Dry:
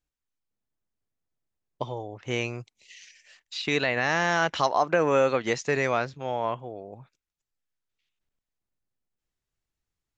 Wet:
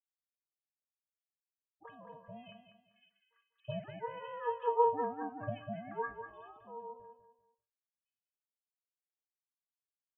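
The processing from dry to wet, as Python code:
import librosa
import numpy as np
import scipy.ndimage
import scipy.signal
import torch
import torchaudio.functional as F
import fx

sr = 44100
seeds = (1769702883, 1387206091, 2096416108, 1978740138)

p1 = fx.sine_speech(x, sr)
p2 = fx.high_shelf(p1, sr, hz=3000.0, db=-7.5)
p3 = fx.octave_resonator(p2, sr, note='F', decay_s=0.27)
p4 = fx.dispersion(p3, sr, late='highs', ms=75.0, hz=1100.0)
p5 = p4 * np.sin(2.0 * np.pi * 240.0 * np.arange(len(p4)) / sr)
p6 = p5 + fx.echo_feedback(p5, sr, ms=196, feedback_pct=30, wet_db=-9, dry=0)
y = p6 * 10.0 ** (9.0 / 20.0)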